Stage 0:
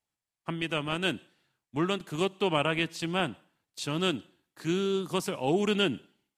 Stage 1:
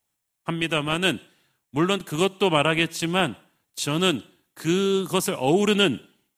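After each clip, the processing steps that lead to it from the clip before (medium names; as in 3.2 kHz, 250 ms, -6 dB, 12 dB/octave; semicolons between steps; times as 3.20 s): treble shelf 8.8 kHz +10.5 dB; band-stop 4.7 kHz, Q 11; trim +6.5 dB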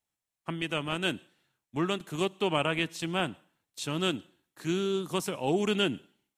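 treble shelf 10 kHz -7 dB; trim -7.5 dB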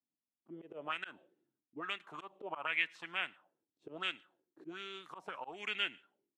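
slow attack 162 ms; auto-wah 260–2100 Hz, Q 3.8, up, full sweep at -28.5 dBFS; trim +4 dB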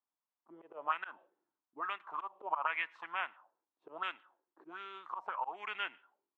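band-pass filter 1 kHz, Q 2.8; trim +10.5 dB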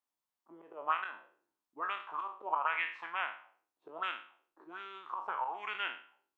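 spectral sustain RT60 0.44 s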